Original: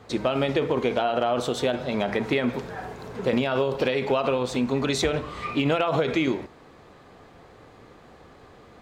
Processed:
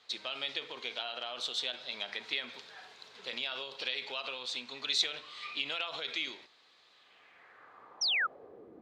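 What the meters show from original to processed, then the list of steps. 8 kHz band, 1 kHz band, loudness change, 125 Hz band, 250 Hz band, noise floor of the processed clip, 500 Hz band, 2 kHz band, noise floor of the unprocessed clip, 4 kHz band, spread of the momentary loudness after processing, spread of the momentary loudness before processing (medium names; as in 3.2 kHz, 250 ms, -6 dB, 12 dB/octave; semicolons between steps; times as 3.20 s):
-5.5 dB, -15.0 dB, -9.5 dB, under -30 dB, -28.0 dB, -64 dBFS, -22.5 dB, -5.0 dB, -51 dBFS, +1.5 dB, 15 LU, 7 LU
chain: band-pass sweep 3.9 kHz -> 330 Hz, 6.93–8.74 s; painted sound fall, 8.01–8.27 s, 1.2–6 kHz -32 dBFS; trim +2.5 dB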